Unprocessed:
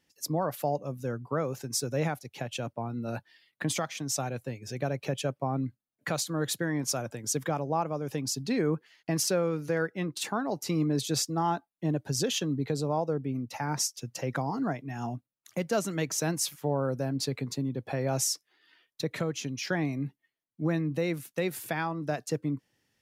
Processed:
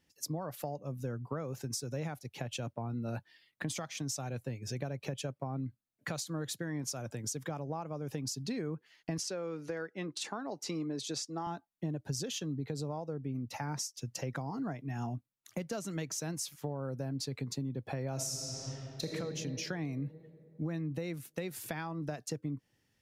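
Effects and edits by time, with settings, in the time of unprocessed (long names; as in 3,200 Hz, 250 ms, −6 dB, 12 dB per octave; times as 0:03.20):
0:09.18–0:11.47: band-pass filter 250–7,900 Hz
0:18.14–0:19.10: thrown reverb, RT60 2.8 s, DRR −3.5 dB
whole clip: dynamic equaliser 5,900 Hz, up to +4 dB, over −46 dBFS, Q 0.81; downward compressor 5 to 1, threshold −34 dBFS; low-shelf EQ 160 Hz +8 dB; level −2.5 dB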